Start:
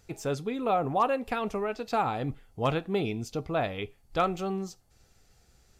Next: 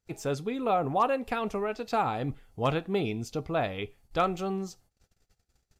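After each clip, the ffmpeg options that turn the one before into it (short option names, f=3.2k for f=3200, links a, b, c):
-af "agate=range=-23dB:threshold=-58dB:ratio=16:detection=peak"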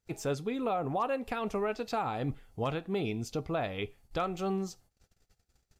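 -af "alimiter=limit=-22.5dB:level=0:latency=1:release=249"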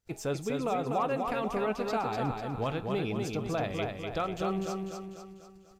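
-af "aecho=1:1:247|494|741|988|1235|1482:0.631|0.315|0.158|0.0789|0.0394|0.0197"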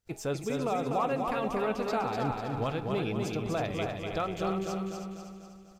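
-af "aecho=1:1:319|638|957:0.355|0.0816|0.0188"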